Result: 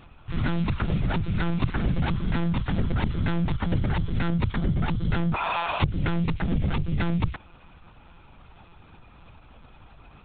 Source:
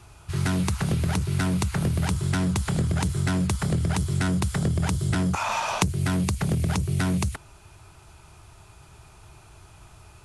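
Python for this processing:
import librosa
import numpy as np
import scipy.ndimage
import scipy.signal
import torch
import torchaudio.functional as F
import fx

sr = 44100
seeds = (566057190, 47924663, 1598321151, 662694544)

y = fx.room_flutter(x, sr, wall_m=10.9, rt60_s=0.3, at=(1.47, 1.97), fade=0.02)
y = fx.lpc_monotone(y, sr, seeds[0], pitch_hz=170.0, order=16)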